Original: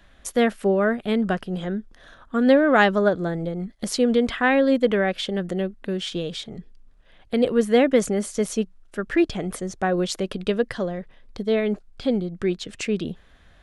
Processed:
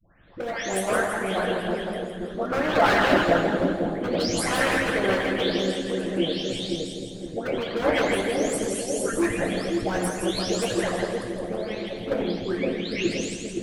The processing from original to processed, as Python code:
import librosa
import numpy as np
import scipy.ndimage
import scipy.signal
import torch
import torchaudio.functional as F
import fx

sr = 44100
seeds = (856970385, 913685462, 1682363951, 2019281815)

y = fx.spec_delay(x, sr, highs='late', ms=506)
y = fx.notch(y, sr, hz=400.0, q=13.0)
y = fx.echo_split(y, sr, split_hz=670.0, low_ms=521, high_ms=165, feedback_pct=52, wet_db=-4)
y = fx.dynamic_eq(y, sr, hz=950.0, q=0.71, threshold_db=-35.0, ratio=4.0, max_db=4)
y = np.clip(y, -10.0 ** (-14.5 / 20.0), 10.0 ** (-14.5 / 20.0))
y = fx.rev_fdn(y, sr, rt60_s=1.3, lf_ratio=1.45, hf_ratio=1.0, size_ms=52.0, drr_db=-1.5)
y = fx.hpss(y, sr, part='harmonic', gain_db=-17)
y = y * 10.0 ** (2.5 / 20.0)